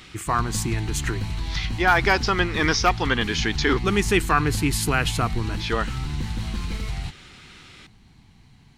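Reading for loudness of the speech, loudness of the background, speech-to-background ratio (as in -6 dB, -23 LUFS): -23.0 LUFS, -30.5 LUFS, 7.5 dB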